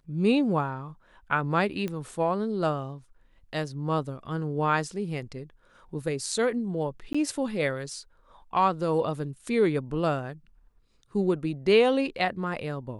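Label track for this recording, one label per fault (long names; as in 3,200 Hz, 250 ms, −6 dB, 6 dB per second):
1.880000	1.880000	click −20 dBFS
7.130000	7.140000	drop-out 15 ms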